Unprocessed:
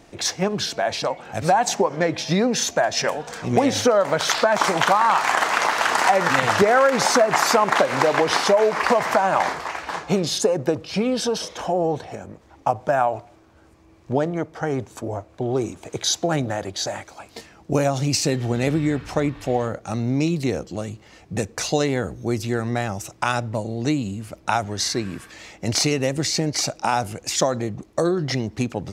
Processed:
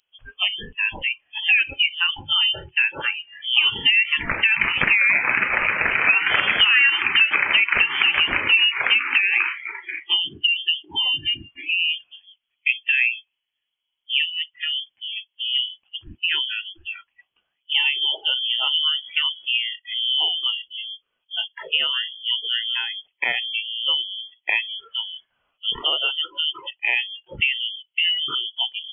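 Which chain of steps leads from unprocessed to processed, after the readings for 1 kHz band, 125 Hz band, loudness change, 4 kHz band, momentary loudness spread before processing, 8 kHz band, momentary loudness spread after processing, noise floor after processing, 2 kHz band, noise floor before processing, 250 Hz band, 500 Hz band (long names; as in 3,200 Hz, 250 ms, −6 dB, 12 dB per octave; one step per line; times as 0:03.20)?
−11.5 dB, below −15 dB, +2.0 dB, +10.0 dB, 12 LU, below −40 dB, 13 LU, −78 dBFS, +7.0 dB, −52 dBFS, −20.0 dB, −20.5 dB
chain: voice inversion scrambler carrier 3,300 Hz
noise reduction from a noise print of the clip's start 28 dB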